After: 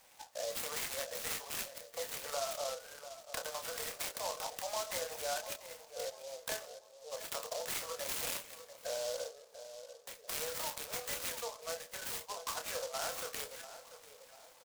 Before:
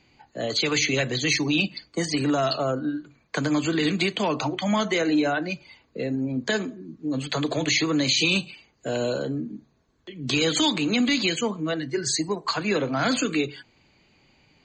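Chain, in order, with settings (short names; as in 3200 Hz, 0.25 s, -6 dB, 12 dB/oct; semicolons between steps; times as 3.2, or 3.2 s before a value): steep high-pass 480 Hz 96 dB/oct; high shelf 4500 Hz -10 dB; compressor 2.5:1, threshold -47 dBFS, peak gain reduction 16.5 dB; doubler 28 ms -5.5 dB; darkening echo 0.691 s, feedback 51%, low-pass 1100 Hz, level -10.5 dB; noise-modulated delay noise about 5100 Hz, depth 0.11 ms; gain +2 dB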